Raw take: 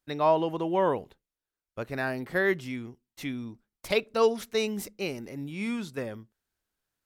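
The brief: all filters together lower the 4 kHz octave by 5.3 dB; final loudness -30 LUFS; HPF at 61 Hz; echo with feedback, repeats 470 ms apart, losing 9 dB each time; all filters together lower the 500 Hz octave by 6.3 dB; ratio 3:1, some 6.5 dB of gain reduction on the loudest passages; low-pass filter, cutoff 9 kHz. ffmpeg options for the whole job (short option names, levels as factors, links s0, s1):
-af "highpass=61,lowpass=9000,equalizer=f=500:t=o:g=-8,equalizer=f=4000:t=o:g=-6.5,acompressor=threshold=0.0282:ratio=3,aecho=1:1:470|940|1410|1880:0.355|0.124|0.0435|0.0152,volume=2.24"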